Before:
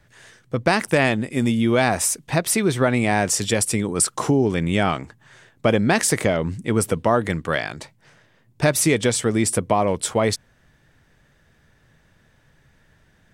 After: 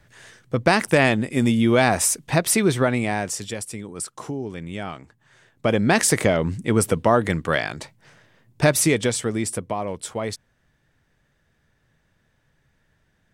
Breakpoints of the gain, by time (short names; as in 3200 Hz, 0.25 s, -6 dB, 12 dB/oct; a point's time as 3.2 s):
2.68 s +1 dB
3.66 s -11.5 dB
4.96 s -11.5 dB
5.97 s +1 dB
8.69 s +1 dB
9.75 s -8 dB